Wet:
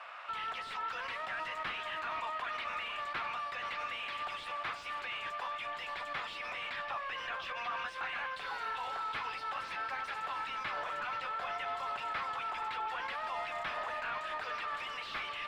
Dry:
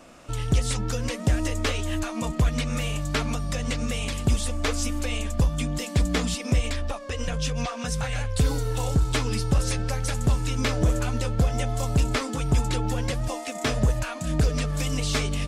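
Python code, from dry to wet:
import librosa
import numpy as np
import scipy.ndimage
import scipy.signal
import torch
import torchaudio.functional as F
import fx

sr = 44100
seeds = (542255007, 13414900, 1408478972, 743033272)

p1 = scipy.signal.sosfilt(scipy.signal.butter(4, 960.0, 'highpass', fs=sr, output='sos'), x)
p2 = fx.high_shelf(p1, sr, hz=11000.0, db=-7.0)
p3 = fx.over_compress(p2, sr, threshold_db=-43.0, ratio=-1.0)
p4 = p2 + (p3 * librosa.db_to_amplitude(2.0))
p5 = 10.0 ** (-30.0 / 20.0) * np.tanh(p4 / 10.0 ** (-30.0 / 20.0))
p6 = fx.air_absorb(p5, sr, metres=440.0)
p7 = p6 + fx.echo_single(p6, sr, ms=472, db=-11.5, dry=0)
y = p7 * librosa.db_to_amplitude(1.5)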